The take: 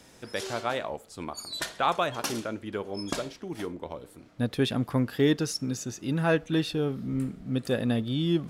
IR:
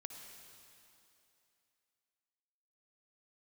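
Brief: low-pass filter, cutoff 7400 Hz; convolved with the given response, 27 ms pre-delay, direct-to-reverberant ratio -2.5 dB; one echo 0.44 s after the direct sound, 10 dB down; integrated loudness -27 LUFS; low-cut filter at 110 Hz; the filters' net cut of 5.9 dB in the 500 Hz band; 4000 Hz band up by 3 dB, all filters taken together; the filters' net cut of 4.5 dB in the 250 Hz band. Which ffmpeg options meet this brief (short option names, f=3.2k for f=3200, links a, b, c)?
-filter_complex "[0:a]highpass=110,lowpass=7.4k,equalizer=f=250:t=o:g=-3.5,equalizer=f=500:t=o:g=-6.5,equalizer=f=4k:t=o:g=4,aecho=1:1:440:0.316,asplit=2[a][b];[1:a]atrim=start_sample=2205,adelay=27[c];[b][c]afir=irnorm=-1:irlink=0,volume=6.5dB[d];[a][d]amix=inputs=2:normalize=0,volume=0.5dB"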